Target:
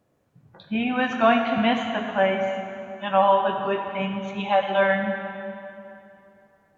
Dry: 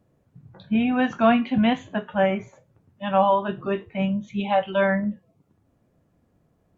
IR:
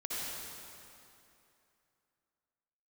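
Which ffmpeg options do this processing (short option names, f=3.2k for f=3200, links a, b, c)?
-filter_complex "[0:a]lowshelf=f=310:g=-11,asplit=2[a][b];[1:a]atrim=start_sample=2205[c];[b][c]afir=irnorm=-1:irlink=0,volume=-5.5dB[d];[a][d]amix=inputs=2:normalize=0"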